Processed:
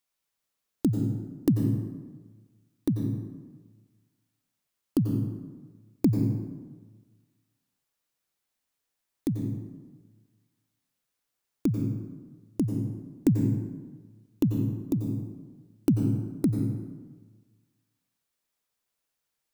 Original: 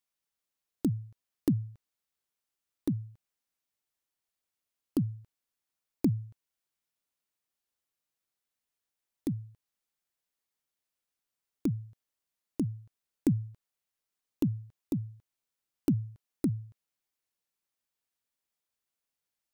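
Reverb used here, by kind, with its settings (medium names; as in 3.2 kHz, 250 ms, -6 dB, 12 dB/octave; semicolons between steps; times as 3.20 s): plate-style reverb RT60 1.4 s, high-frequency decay 0.55×, pre-delay 80 ms, DRR 3 dB; trim +4 dB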